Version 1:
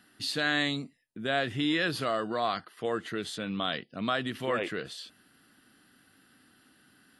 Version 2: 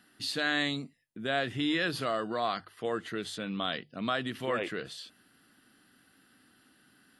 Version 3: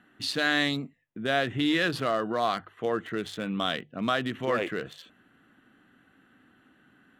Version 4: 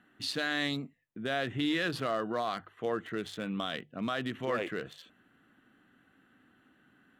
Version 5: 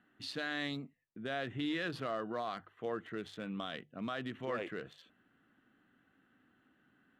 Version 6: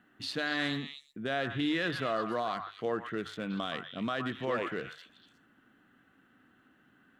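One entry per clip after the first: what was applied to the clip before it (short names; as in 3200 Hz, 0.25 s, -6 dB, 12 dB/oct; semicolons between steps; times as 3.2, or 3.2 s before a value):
notches 50/100/150 Hz; gain -1.5 dB
Wiener smoothing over 9 samples; gain +4.5 dB
limiter -17.5 dBFS, peak gain reduction 5 dB; gain -4 dB
high shelf 6700 Hz -9.5 dB; gain -5.5 dB
delay with a stepping band-pass 0.12 s, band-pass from 1200 Hz, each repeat 1.4 oct, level -4 dB; gain +5.5 dB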